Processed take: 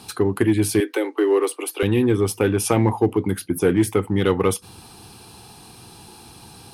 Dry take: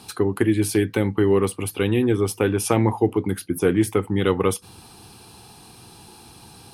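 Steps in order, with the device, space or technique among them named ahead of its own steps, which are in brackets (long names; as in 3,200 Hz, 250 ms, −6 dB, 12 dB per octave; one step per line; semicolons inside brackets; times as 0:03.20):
parallel distortion (in parallel at −8 dB: hard clipping −16.5 dBFS, distortion −10 dB)
0:00.80–0:01.83: on the sum: Butterworth high-pass 300 Hz 72 dB per octave
level −1 dB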